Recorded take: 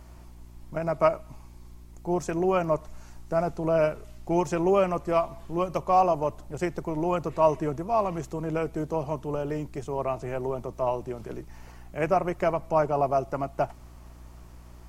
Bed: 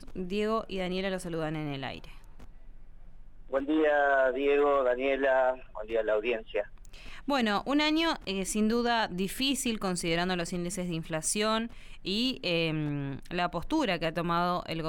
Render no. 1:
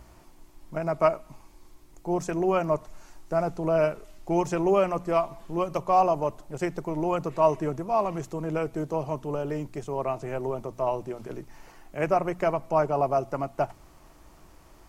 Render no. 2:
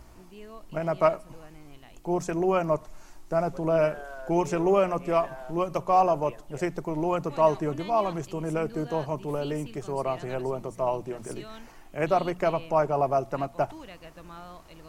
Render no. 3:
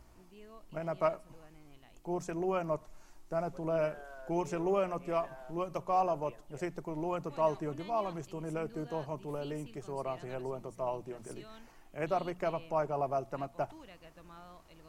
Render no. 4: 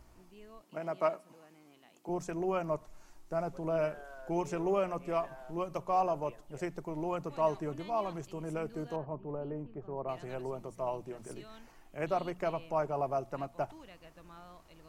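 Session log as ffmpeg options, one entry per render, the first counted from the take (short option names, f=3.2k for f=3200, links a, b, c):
-af "bandreject=f=60:t=h:w=4,bandreject=f=120:t=h:w=4,bandreject=f=180:t=h:w=4,bandreject=f=240:t=h:w=4"
-filter_complex "[1:a]volume=-16.5dB[a];[0:a][a]amix=inputs=2:normalize=0"
-af "volume=-8.5dB"
-filter_complex "[0:a]asettb=1/sr,asplit=3[a][b][c];[a]atrim=end=0.624[d];[b]atrim=start=0.62:end=2.09,asetpts=PTS-STARTPTS,afade=t=in:d=0.004:c=qsin,afade=t=out:st=1.466:d=0.004:c=qsin,highpass=f=180:w=0.5412,highpass=f=180:w=1.3066[e];[c]atrim=start=2.086[f];[d][e]acrossfade=d=0.004:c1=hsin:c2=qsin[g];[g][f]acrossfade=d=0.004:c1=qsin:c2=hsin,asettb=1/sr,asplit=3[h][i][j];[h]atrim=end=8.964[k];[i]atrim=start=8.96:end=10.09,asetpts=PTS-STARTPTS,afade=t=in:d=0.004:c=qsin,afade=t=out:st=1.126:d=0.004:c=qsin,lowpass=1.1k[l];[j]atrim=start=10.086[m];[k][l]acrossfade=d=0.004:c1=hsin:c2=qsin[n];[n][m]acrossfade=d=0.004:c1=qsin:c2=hsin"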